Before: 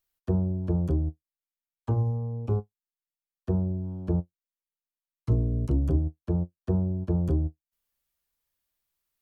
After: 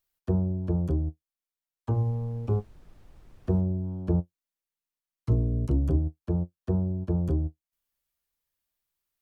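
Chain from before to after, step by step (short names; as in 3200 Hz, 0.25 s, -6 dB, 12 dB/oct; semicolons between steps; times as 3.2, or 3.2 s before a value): vocal rider 2 s; 1.93–3.6 added noise brown -51 dBFS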